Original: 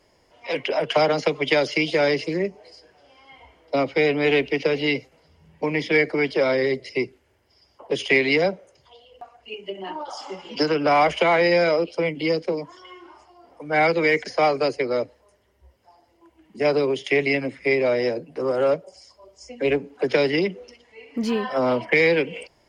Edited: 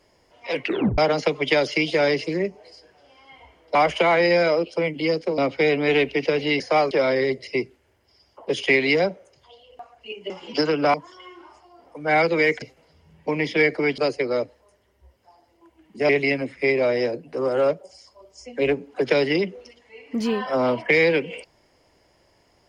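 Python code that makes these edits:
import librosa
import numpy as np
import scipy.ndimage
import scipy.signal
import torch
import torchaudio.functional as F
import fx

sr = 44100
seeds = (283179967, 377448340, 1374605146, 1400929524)

y = fx.edit(x, sr, fx.tape_stop(start_s=0.64, length_s=0.34),
    fx.swap(start_s=4.97, length_s=1.36, other_s=14.27, other_length_s=0.31),
    fx.cut(start_s=9.72, length_s=0.6),
    fx.move(start_s=10.96, length_s=1.63, to_s=3.75),
    fx.cut(start_s=16.69, length_s=0.43), tone=tone)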